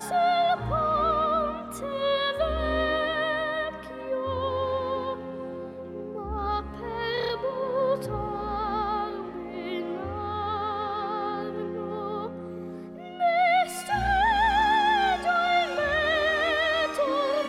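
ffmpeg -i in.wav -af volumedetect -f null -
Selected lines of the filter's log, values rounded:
mean_volume: -26.9 dB
max_volume: -13.4 dB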